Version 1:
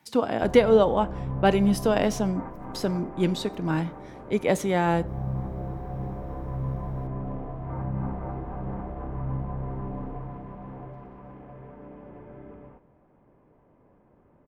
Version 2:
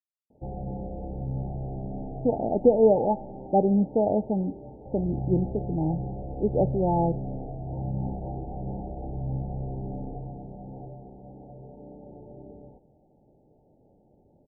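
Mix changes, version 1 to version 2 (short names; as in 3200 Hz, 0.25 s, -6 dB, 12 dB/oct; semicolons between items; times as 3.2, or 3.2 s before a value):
speech: entry +2.10 s; master: add Chebyshev low-pass 880 Hz, order 10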